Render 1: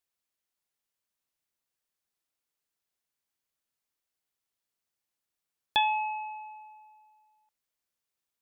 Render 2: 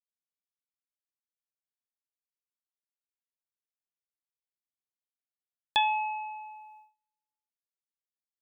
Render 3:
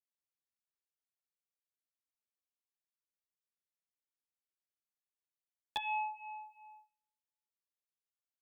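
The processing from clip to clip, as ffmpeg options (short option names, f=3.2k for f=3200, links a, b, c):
-af "agate=range=-30dB:threshold=-55dB:ratio=16:detection=peak"
-filter_complex "[0:a]asplit=2[a][b];[b]adelay=11.4,afreqshift=-2.8[c];[a][c]amix=inputs=2:normalize=1,volume=-4.5dB"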